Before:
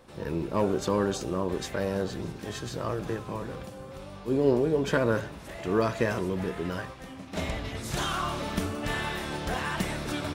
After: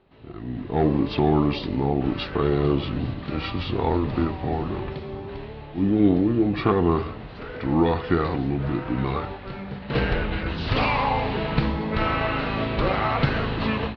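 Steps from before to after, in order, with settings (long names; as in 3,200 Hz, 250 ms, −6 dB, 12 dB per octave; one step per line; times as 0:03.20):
Butterworth low-pass 5,900 Hz 48 dB per octave
automatic gain control gain up to 15.5 dB
wrong playback speed 45 rpm record played at 33 rpm
level −6 dB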